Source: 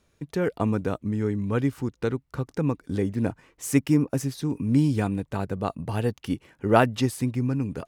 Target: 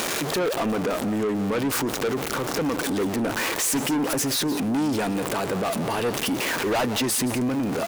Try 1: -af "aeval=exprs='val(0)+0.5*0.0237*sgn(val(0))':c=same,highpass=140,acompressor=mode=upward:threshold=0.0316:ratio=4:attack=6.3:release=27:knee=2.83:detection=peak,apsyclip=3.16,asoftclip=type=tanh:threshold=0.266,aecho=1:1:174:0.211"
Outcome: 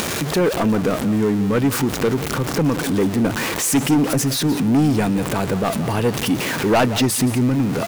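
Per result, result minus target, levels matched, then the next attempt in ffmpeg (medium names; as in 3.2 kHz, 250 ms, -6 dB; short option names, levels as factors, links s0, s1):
125 Hz band +6.0 dB; saturation: distortion -5 dB
-af "aeval=exprs='val(0)+0.5*0.0237*sgn(val(0))':c=same,highpass=320,acompressor=mode=upward:threshold=0.0316:ratio=4:attack=6.3:release=27:knee=2.83:detection=peak,apsyclip=3.16,asoftclip=type=tanh:threshold=0.266,aecho=1:1:174:0.211"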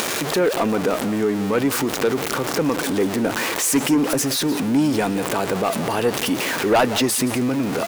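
saturation: distortion -6 dB
-af "aeval=exprs='val(0)+0.5*0.0237*sgn(val(0))':c=same,highpass=320,acompressor=mode=upward:threshold=0.0316:ratio=4:attack=6.3:release=27:knee=2.83:detection=peak,apsyclip=3.16,asoftclip=type=tanh:threshold=0.0891,aecho=1:1:174:0.211"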